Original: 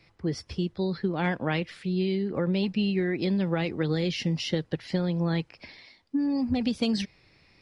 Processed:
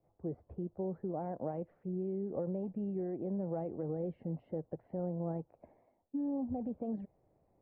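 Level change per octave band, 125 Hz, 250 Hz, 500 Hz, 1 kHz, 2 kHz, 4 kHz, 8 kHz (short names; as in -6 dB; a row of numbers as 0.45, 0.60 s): -12.0 dB, -11.0 dB, -7.5 dB, -9.5 dB, under -30 dB, under -40 dB, n/a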